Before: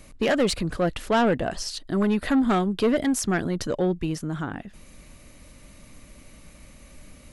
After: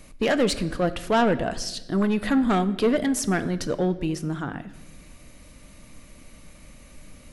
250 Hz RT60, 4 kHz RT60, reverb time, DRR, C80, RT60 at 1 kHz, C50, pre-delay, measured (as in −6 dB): 1.6 s, 0.90 s, 1.0 s, 11.5 dB, 17.0 dB, 0.90 s, 15.5 dB, 4 ms